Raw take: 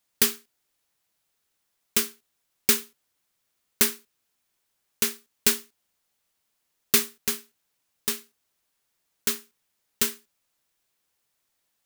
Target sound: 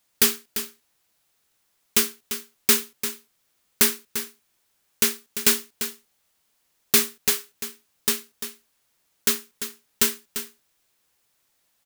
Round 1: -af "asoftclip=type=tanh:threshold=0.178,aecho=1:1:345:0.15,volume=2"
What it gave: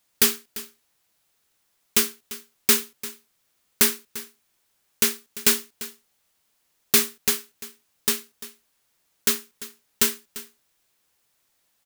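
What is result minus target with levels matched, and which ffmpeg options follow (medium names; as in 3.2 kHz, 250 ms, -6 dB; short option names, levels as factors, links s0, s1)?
echo-to-direct -6 dB
-af "asoftclip=type=tanh:threshold=0.178,aecho=1:1:345:0.299,volume=2"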